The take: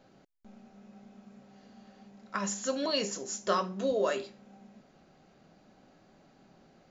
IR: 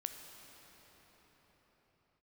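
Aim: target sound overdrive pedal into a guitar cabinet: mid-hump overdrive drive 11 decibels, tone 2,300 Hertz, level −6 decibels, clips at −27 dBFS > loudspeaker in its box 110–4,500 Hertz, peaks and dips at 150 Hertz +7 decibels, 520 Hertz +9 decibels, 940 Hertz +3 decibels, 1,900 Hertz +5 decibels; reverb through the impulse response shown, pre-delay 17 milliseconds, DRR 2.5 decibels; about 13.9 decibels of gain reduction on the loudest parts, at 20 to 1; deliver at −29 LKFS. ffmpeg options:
-filter_complex "[0:a]acompressor=threshold=-38dB:ratio=20,asplit=2[link_01][link_02];[1:a]atrim=start_sample=2205,adelay=17[link_03];[link_02][link_03]afir=irnorm=-1:irlink=0,volume=-1dB[link_04];[link_01][link_04]amix=inputs=2:normalize=0,asplit=2[link_05][link_06];[link_06]highpass=frequency=720:poles=1,volume=11dB,asoftclip=type=tanh:threshold=-27dB[link_07];[link_05][link_07]amix=inputs=2:normalize=0,lowpass=frequency=2300:poles=1,volume=-6dB,highpass=110,equalizer=frequency=150:width_type=q:width=4:gain=7,equalizer=frequency=520:width_type=q:width=4:gain=9,equalizer=frequency=940:width_type=q:width=4:gain=3,equalizer=frequency=1900:width_type=q:width=4:gain=5,lowpass=frequency=4500:width=0.5412,lowpass=frequency=4500:width=1.3066,volume=7.5dB"

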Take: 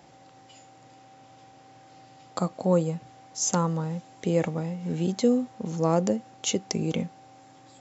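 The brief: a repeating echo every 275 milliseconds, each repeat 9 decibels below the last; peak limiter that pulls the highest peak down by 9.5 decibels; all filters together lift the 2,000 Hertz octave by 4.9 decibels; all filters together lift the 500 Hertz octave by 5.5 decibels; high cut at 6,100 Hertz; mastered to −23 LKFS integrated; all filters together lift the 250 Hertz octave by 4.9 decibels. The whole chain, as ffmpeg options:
ffmpeg -i in.wav -af "lowpass=6100,equalizer=frequency=250:width_type=o:gain=5.5,equalizer=frequency=500:width_type=o:gain=4.5,equalizer=frequency=2000:width_type=o:gain=6,alimiter=limit=-15dB:level=0:latency=1,aecho=1:1:275|550|825|1100:0.355|0.124|0.0435|0.0152,volume=3.5dB" out.wav

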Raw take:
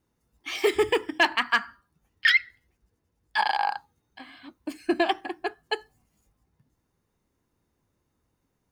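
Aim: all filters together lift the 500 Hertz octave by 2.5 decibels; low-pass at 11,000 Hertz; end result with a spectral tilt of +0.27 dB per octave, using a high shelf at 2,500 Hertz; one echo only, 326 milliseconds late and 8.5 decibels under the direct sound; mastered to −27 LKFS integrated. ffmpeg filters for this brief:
ffmpeg -i in.wav -af "lowpass=11000,equalizer=frequency=500:width_type=o:gain=3.5,highshelf=frequency=2500:gain=-5,aecho=1:1:326:0.376,volume=-1dB" out.wav

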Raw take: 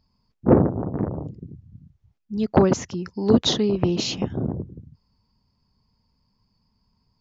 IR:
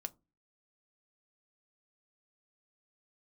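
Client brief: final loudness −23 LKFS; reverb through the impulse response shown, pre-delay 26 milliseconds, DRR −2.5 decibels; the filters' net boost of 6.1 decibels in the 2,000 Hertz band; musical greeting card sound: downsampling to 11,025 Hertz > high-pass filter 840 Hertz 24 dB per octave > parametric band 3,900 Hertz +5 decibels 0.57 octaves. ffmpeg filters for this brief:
-filter_complex "[0:a]equalizer=frequency=2000:width_type=o:gain=7.5,asplit=2[link_01][link_02];[1:a]atrim=start_sample=2205,adelay=26[link_03];[link_02][link_03]afir=irnorm=-1:irlink=0,volume=5.5dB[link_04];[link_01][link_04]amix=inputs=2:normalize=0,aresample=11025,aresample=44100,highpass=frequency=840:width=0.5412,highpass=frequency=840:width=1.3066,equalizer=frequency=3900:width_type=o:width=0.57:gain=5,volume=-2dB"

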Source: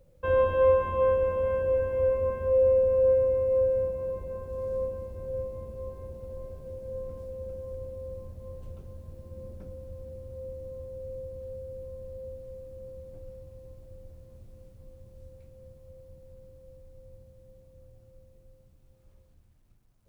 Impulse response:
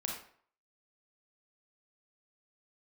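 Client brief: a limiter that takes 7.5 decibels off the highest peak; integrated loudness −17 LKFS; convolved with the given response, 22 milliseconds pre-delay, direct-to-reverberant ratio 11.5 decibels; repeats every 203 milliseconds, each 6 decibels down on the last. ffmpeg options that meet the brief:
-filter_complex "[0:a]alimiter=limit=-20.5dB:level=0:latency=1,aecho=1:1:203|406|609|812|1015|1218:0.501|0.251|0.125|0.0626|0.0313|0.0157,asplit=2[link_01][link_02];[1:a]atrim=start_sample=2205,adelay=22[link_03];[link_02][link_03]afir=irnorm=-1:irlink=0,volume=-13.5dB[link_04];[link_01][link_04]amix=inputs=2:normalize=0,volume=15.5dB"

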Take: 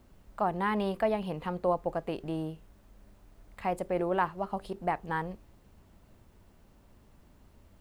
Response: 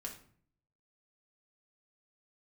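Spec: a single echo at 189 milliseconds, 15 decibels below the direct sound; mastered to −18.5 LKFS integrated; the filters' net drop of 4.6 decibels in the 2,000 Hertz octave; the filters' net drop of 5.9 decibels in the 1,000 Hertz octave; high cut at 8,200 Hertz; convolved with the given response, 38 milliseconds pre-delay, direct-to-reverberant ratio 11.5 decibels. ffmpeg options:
-filter_complex "[0:a]lowpass=8200,equalizer=frequency=1000:width_type=o:gain=-7.5,equalizer=frequency=2000:width_type=o:gain=-3,aecho=1:1:189:0.178,asplit=2[link_01][link_02];[1:a]atrim=start_sample=2205,adelay=38[link_03];[link_02][link_03]afir=irnorm=-1:irlink=0,volume=-9dB[link_04];[link_01][link_04]amix=inputs=2:normalize=0,volume=16dB"

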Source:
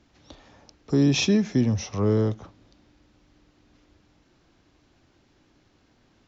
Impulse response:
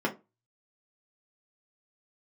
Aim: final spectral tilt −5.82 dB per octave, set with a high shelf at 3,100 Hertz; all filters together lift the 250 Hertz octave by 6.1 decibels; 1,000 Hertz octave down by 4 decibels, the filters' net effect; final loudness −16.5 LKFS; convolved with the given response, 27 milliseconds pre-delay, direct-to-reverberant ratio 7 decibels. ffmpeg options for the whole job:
-filter_complex "[0:a]equalizer=frequency=250:width_type=o:gain=7.5,equalizer=frequency=1000:width_type=o:gain=-6.5,highshelf=frequency=3100:gain=7,asplit=2[link_01][link_02];[1:a]atrim=start_sample=2205,adelay=27[link_03];[link_02][link_03]afir=irnorm=-1:irlink=0,volume=-16.5dB[link_04];[link_01][link_04]amix=inputs=2:normalize=0,volume=0.5dB"

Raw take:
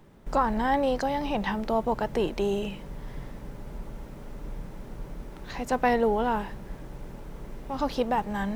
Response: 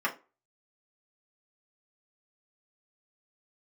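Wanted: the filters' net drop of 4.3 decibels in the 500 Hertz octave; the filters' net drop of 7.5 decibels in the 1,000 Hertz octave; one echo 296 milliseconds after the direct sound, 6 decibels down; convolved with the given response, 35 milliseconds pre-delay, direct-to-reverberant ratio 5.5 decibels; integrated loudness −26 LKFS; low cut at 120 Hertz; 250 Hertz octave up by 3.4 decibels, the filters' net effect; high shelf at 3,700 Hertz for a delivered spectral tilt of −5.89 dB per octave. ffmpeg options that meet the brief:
-filter_complex "[0:a]highpass=120,equalizer=frequency=250:width_type=o:gain=5.5,equalizer=frequency=500:width_type=o:gain=-4.5,equalizer=frequency=1000:width_type=o:gain=-8,highshelf=frequency=3700:gain=-8.5,aecho=1:1:296:0.501,asplit=2[link_01][link_02];[1:a]atrim=start_sample=2205,adelay=35[link_03];[link_02][link_03]afir=irnorm=-1:irlink=0,volume=-15.5dB[link_04];[link_01][link_04]amix=inputs=2:normalize=0,volume=2dB"

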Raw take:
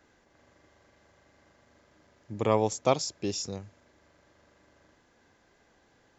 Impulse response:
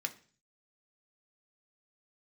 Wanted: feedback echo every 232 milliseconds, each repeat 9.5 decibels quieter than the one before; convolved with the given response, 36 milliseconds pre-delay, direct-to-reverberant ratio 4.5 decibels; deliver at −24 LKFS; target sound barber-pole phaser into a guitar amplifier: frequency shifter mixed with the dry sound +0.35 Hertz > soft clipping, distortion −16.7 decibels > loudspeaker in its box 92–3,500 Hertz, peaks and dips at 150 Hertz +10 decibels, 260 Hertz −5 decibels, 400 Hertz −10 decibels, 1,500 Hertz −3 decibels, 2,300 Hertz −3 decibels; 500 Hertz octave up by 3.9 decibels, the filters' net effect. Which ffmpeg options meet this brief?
-filter_complex "[0:a]equalizer=frequency=500:width_type=o:gain=8,aecho=1:1:232|464|696|928:0.335|0.111|0.0365|0.012,asplit=2[link_01][link_02];[1:a]atrim=start_sample=2205,adelay=36[link_03];[link_02][link_03]afir=irnorm=-1:irlink=0,volume=-6dB[link_04];[link_01][link_04]amix=inputs=2:normalize=0,asplit=2[link_05][link_06];[link_06]afreqshift=0.35[link_07];[link_05][link_07]amix=inputs=2:normalize=1,asoftclip=threshold=-13.5dB,highpass=92,equalizer=frequency=150:width_type=q:width=4:gain=10,equalizer=frequency=260:width_type=q:width=4:gain=-5,equalizer=frequency=400:width_type=q:width=4:gain=-10,equalizer=frequency=1500:width_type=q:width=4:gain=-3,equalizer=frequency=2300:width_type=q:width=4:gain=-3,lowpass=frequency=3500:width=0.5412,lowpass=frequency=3500:width=1.3066,volume=7dB"

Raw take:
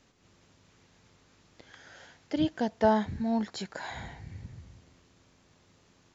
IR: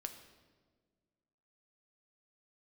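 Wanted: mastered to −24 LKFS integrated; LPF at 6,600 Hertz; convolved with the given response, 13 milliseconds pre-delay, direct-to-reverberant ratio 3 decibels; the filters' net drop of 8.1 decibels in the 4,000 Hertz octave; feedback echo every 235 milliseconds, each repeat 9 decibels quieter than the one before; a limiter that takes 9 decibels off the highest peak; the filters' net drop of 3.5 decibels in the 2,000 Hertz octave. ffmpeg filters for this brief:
-filter_complex "[0:a]lowpass=6600,equalizer=frequency=2000:width_type=o:gain=-3,equalizer=frequency=4000:width_type=o:gain=-9,alimiter=limit=-22.5dB:level=0:latency=1,aecho=1:1:235|470|705|940:0.355|0.124|0.0435|0.0152,asplit=2[link_01][link_02];[1:a]atrim=start_sample=2205,adelay=13[link_03];[link_02][link_03]afir=irnorm=-1:irlink=0,volume=0dB[link_04];[link_01][link_04]amix=inputs=2:normalize=0,volume=7dB"

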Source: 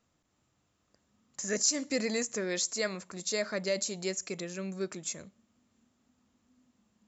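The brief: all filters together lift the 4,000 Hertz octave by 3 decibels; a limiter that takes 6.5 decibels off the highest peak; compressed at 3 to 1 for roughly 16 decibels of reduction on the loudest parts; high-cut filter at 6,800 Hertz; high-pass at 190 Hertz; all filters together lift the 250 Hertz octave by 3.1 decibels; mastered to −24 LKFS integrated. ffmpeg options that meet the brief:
ffmpeg -i in.wav -af "highpass=190,lowpass=6800,equalizer=frequency=250:width_type=o:gain=6,equalizer=frequency=4000:width_type=o:gain=4.5,acompressor=threshold=-46dB:ratio=3,volume=22.5dB,alimiter=limit=-13.5dB:level=0:latency=1" out.wav

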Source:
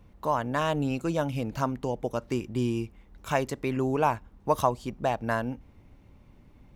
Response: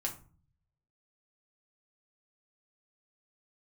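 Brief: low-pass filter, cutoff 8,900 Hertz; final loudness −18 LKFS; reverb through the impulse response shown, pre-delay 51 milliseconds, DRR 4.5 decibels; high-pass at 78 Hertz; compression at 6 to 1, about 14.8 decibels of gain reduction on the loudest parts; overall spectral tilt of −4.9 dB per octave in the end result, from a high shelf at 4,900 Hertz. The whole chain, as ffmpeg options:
-filter_complex "[0:a]highpass=78,lowpass=8900,highshelf=frequency=4900:gain=-8,acompressor=threshold=-35dB:ratio=6,asplit=2[link_01][link_02];[1:a]atrim=start_sample=2205,adelay=51[link_03];[link_02][link_03]afir=irnorm=-1:irlink=0,volume=-6.5dB[link_04];[link_01][link_04]amix=inputs=2:normalize=0,volume=21dB"

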